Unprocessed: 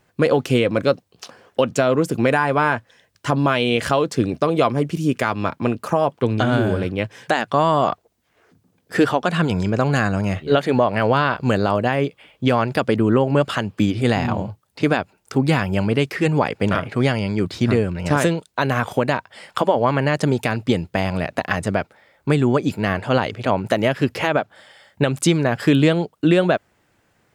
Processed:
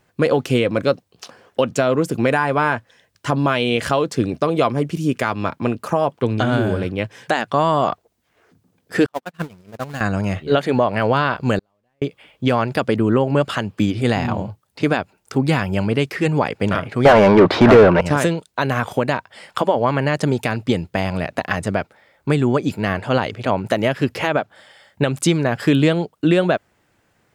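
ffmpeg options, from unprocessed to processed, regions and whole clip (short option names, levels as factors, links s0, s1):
-filter_complex "[0:a]asettb=1/sr,asplit=3[s0][s1][s2];[s0]atrim=end=9.064[s3];[s1]atrim=start=9.06:end=10.01,asetpts=PTS-STARTPTS,afade=t=in:d=0.004:c=qsin,afade=t=out:st=0.946:d=0.004:c=qsin,aeval=exprs='val(0)+0.5*0.106*sgn(val(0))':c=same,agate=range=0.002:threshold=0.2:ratio=16:release=100:detection=peak,lowshelf=f=63:g=-9[s4];[s2]atrim=start=10.006[s5];[s3][s4]acrossfade=d=0.004:c1=hsin:c2=qsin[s6];[s6][s5]acrossfade=d=0.004:c1=qsin:c2=hsin,asettb=1/sr,asplit=3[s7][s8][s9];[s7]atrim=end=11.594[s10];[s8]atrim=start=11.59:end=12.02,asetpts=PTS-STARTPTS,afade=t=in:d=0.004:c=qsin,afade=t=out:st=0.426:d=0.004:c=qsin,aeval=exprs='val(0)+0.5*0.075*sgn(val(0))':c=same,bandreject=f=1400:w=20,agate=range=0.00282:threshold=0.631:ratio=16:release=100:detection=peak[s11];[s9]atrim=start=12.016[s12];[s10][s11]acrossfade=d=0.004:c1=hsin:c2=qsin[s13];[s13][s12]acrossfade=d=0.004:c1=qsin:c2=hsin,asettb=1/sr,asplit=3[s14][s15][s16];[s14]atrim=end=17.054[s17];[s15]atrim=start=17.05:end=18.01,asetpts=PTS-STARTPTS,afade=t=in:d=0.004:c=qsin,afade=t=out:st=0.956:d=0.004:c=qsin,lowpass=4700,equalizer=f=770:w=0.64:g=10,asplit=2[s18][s19];[s19]highpass=f=720:p=1,volume=25.1,asoftclip=type=tanh:threshold=0.944[s20];[s18][s20]amix=inputs=2:normalize=0,lowpass=f=1200:p=1,volume=0.501[s21];[s16]atrim=start=18.006[s22];[s17][s21]acrossfade=d=0.004:c1=hsin:c2=qsin[s23];[s23][s22]acrossfade=d=0.004:c1=qsin:c2=hsin"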